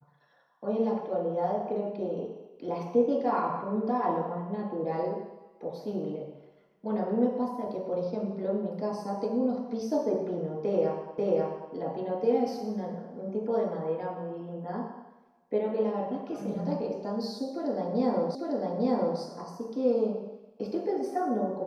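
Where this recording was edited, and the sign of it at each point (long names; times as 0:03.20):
0:11.18: the same again, the last 0.54 s
0:18.35: the same again, the last 0.85 s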